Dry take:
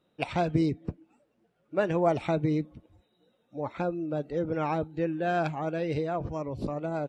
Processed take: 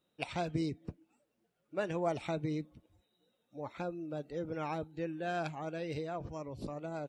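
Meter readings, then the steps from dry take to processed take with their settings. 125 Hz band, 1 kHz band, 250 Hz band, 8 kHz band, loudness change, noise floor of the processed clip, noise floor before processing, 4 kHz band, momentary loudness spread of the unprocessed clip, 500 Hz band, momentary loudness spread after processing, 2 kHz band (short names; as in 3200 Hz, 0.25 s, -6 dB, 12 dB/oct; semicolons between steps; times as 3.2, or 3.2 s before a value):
-9.0 dB, -8.5 dB, -9.0 dB, n/a, -8.5 dB, -80 dBFS, -73 dBFS, -3.5 dB, 10 LU, -8.5 dB, 10 LU, -6.5 dB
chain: high shelf 3300 Hz +10 dB; gain -9 dB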